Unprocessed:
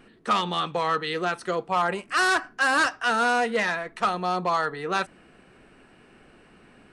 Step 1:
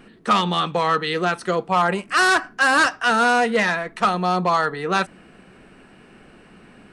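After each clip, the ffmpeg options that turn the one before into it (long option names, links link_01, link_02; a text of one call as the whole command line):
ffmpeg -i in.wav -af "equalizer=frequency=190:width_type=o:width=0.47:gain=5,volume=5dB" out.wav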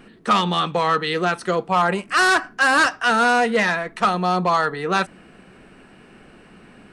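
ffmpeg -i in.wav -af "acontrast=20,volume=-4dB" out.wav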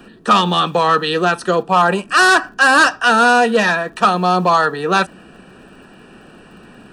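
ffmpeg -i in.wav -filter_complex "[0:a]acrossover=split=110|1100|1800[link_01][link_02][link_03][link_04];[link_01]aeval=exprs='(mod(447*val(0)+1,2)-1)/447':channel_layout=same[link_05];[link_05][link_02][link_03][link_04]amix=inputs=4:normalize=0,asuperstop=centerf=2100:order=8:qfactor=5.4,volume=5.5dB" out.wav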